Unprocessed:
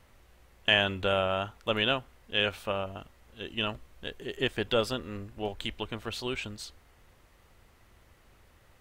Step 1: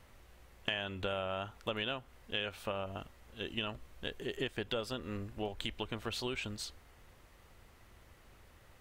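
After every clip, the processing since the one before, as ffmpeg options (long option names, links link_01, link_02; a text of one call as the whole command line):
ffmpeg -i in.wav -af "acompressor=threshold=-34dB:ratio=5" out.wav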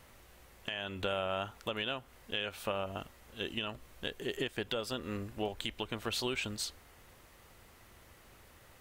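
ffmpeg -i in.wav -af "lowshelf=frequency=83:gain=-7,alimiter=level_in=0.5dB:limit=-24dB:level=0:latency=1:release=316,volume=-0.5dB,highshelf=frequency=7300:gain=6,volume=3dB" out.wav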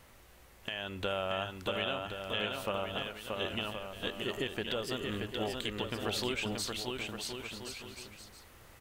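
ffmpeg -i in.wav -af "aecho=1:1:630|1071|1380|1596|1747:0.631|0.398|0.251|0.158|0.1" out.wav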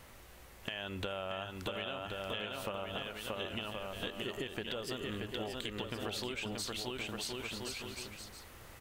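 ffmpeg -i in.wav -af "acompressor=threshold=-39dB:ratio=6,volume=3dB" out.wav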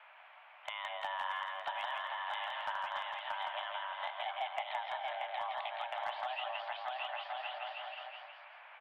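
ffmpeg -i in.wav -filter_complex "[0:a]highpass=frequency=240:width_type=q:width=0.5412,highpass=frequency=240:width_type=q:width=1.307,lowpass=frequency=2600:width_type=q:width=0.5176,lowpass=frequency=2600:width_type=q:width=0.7071,lowpass=frequency=2600:width_type=q:width=1.932,afreqshift=380,volume=30.5dB,asoftclip=hard,volume=-30.5dB,asplit=2[link_01][link_02];[link_02]aecho=0:1:166|332|498:0.631|0.151|0.0363[link_03];[link_01][link_03]amix=inputs=2:normalize=0,volume=1dB" out.wav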